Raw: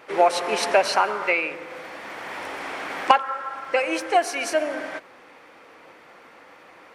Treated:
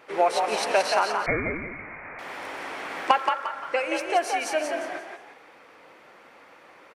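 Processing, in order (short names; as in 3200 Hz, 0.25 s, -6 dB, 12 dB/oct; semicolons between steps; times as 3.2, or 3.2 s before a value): frequency-shifting echo 0.175 s, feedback 34%, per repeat +52 Hz, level -5 dB; 1.26–2.19 inverted band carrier 2700 Hz; gain -4 dB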